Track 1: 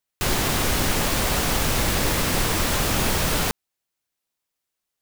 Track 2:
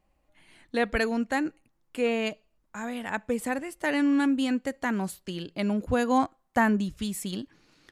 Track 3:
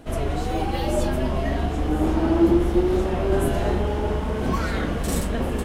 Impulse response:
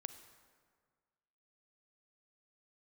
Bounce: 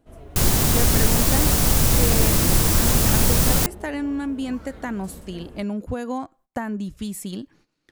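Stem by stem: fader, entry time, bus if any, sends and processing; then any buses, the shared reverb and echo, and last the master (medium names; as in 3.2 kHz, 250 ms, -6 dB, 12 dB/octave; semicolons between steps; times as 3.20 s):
0.0 dB, 0.15 s, no send, tone controls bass +7 dB, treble +7 dB
+2.5 dB, 0.00 s, no send, compression 20:1, threshold -25 dBFS, peak gain reduction 9 dB; gate -57 dBFS, range -15 dB
-17.0 dB, 0.00 s, no send, none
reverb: none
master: peaking EQ 2.8 kHz -4.5 dB 2.8 oct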